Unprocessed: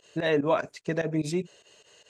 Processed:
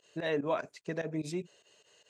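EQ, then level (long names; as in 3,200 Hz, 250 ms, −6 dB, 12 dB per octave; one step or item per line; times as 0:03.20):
low-shelf EQ 61 Hz −10 dB
−7.0 dB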